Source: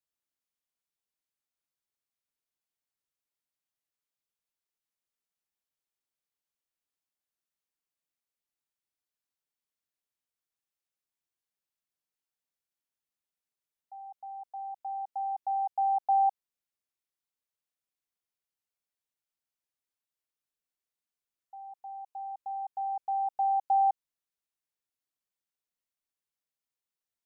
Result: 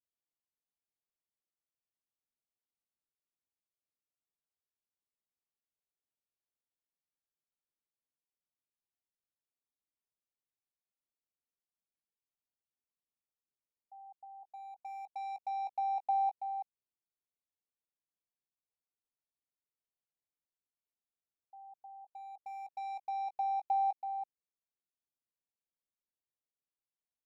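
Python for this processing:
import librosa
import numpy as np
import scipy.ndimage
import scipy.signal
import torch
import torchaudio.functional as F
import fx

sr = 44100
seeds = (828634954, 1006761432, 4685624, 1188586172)

y = fx.wiener(x, sr, points=25)
y = y + 10.0 ** (-9.5 / 20.0) * np.pad(y, (int(329 * sr / 1000.0), 0))[:len(y)]
y = y * 10.0 ** (-4.5 / 20.0)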